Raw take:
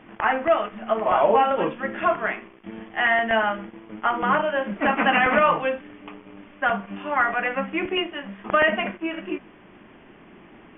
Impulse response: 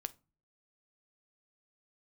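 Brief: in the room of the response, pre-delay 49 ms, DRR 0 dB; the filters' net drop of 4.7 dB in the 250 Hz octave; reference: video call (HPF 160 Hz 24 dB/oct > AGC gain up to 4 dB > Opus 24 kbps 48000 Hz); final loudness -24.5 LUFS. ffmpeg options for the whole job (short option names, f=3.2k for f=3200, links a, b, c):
-filter_complex "[0:a]equalizer=f=250:t=o:g=-6,asplit=2[a][b];[1:a]atrim=start_sample=2205,adelay=49[c];[b][c]afir=irnorm=-1:irlink=0,volume=2dB[d];[a][d]amix=inputs=2:normalize=0,highpass=f=160:w=0.5412,highpass=f=160:w=1.3066,dynaudnorm=m=4dB,volume=-4dB" -ar 48000 -c:a libopus -b:a 24k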